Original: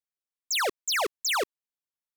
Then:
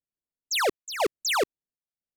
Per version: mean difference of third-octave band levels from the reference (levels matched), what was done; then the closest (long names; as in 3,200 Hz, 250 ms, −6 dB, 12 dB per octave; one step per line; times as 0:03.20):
2.5 dB: adaptive Wiener filter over 41 samples
low-pass that shuts in the quiet parts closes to 2,200 Hz, open at −31.5 dBFS
square-wave tremolo 1 Hz, depth 65%, duty 75%
low-shelf EQ 490 Hz +5 dB
level +3 dB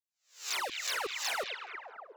12.0 dB: peak hold with a rise ahead of every peak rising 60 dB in 0.37 s
notch filter 3,300 Hz, Q 22
echo through a band-pass that steps 211 ms, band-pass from 2,700 Hz, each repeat −0.7 octaves, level −2 dB
flanger whose copies keep moving one way falling 1.7 Hz
level −6 dB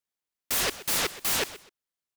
18.5 dB: high-pass filter 330 Hz 24 dB per octave
soft clipping −28.5 dBFS, distortion −12 dB
on a send: repeating echo 127 ms, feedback 25%, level −16 dB
on the sum: short delay modulated by noise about 2,000 Hz, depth 0.39 ms
level +5 dB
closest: first